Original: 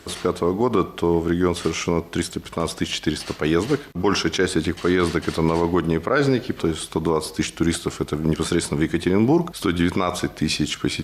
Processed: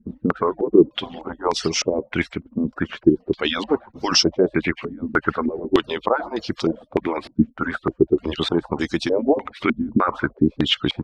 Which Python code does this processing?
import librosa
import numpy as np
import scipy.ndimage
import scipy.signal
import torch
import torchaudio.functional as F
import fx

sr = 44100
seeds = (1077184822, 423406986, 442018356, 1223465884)

y = fx.hpss_only(x, sr, part='percussive')
y = fx.filter_held_lowpass(y, sr, hz=3.3, low_hz=240.0, high_hz=5300.0)